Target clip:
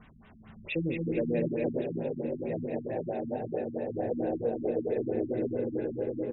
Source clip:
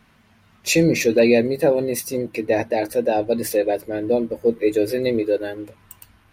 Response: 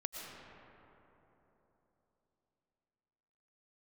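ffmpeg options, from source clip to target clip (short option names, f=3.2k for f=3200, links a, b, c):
-filter_complex "[0:a]lowshelf=f=160:g=6,bandreject=f=50:t=h:w=6,bandreject=f=100:t=h:w=6[a];[1:a]atrim=start_sample=2205,asetrate=26901,aresample=44100[b];[a][b]afir=irnorm=-1:irlink=0,acompressor=threshold=-40dB:ratio=2,aecho=1:1:1156:0.398,asplit=3[c][d][e];[c]afade=t=out:st=1.81:d=0.02[f];[d]flanger=delay=18:depth=3.4:speed=2,afade=t=in:st=1.81:d=0.02,afade=t=out:st=3.93:d=0.02[g];[e]afade=t=in:st=3.93:d=0.02[h];[f][g][h]amix=inputs=3:normalize=0,afftfilt=real='re*lt(b*sr/1024,280*pow(4000/280,0.5+0.5*sin(2*PI*4.5*pts/sr)))':imag='im*lt(b*sr/1024,280*pow(4000/280,0.5+0.5*sin(2*PI*4.5*pts/sr)))':win_size=1024:overlap=0.75"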